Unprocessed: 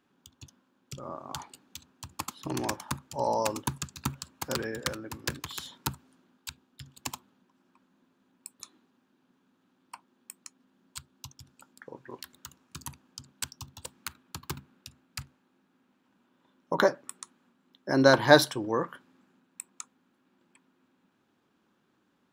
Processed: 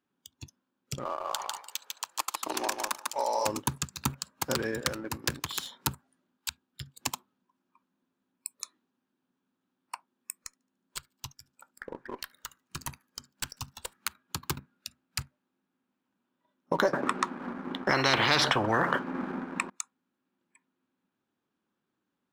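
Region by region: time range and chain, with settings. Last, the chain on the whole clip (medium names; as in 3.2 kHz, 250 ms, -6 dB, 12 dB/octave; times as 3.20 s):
1.05–3.46 s: high-pass 550 Hz + feedback delay 148 ms, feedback 18%, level -4 dB + three bands compressed up and down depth 40%
10.44–13.97 s: dynamic bell 1.8 kHz, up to +5 dB, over -57 dBFS, Q 0.86 + valve stage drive 31 dB, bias 0.4 + feedback echo behind a high-pass 73 ms, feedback 55%, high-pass 1.6 kHz, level -22 dB
16.93–19.70 s: low-pass 1.5 kHz + bass shelf 160 Hz -9 dB + spectrum-flattening compressor 10:1
whole clip: spectral noise reduction 13 dB; waveshaping leveller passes 1; compression 2:1, threshold -33 dBFS; trim +3.5 dB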